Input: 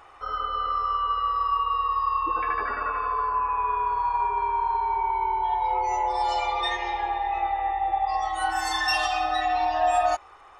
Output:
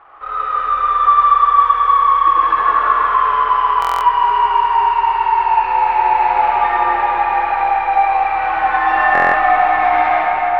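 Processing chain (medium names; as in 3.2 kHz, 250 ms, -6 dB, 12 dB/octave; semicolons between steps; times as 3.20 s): square wave that keeps the level; low-pass 1.7 kHz 24 dB/octave; tilt shelf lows -9.5 dB, about 650 Hz; reverberation RT60 4.9 s, pre-delay 25 ms, DRR -6.5 dB; buffer glitch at 3.80/9.13 s, samples 1024, times 8; trim -1 dB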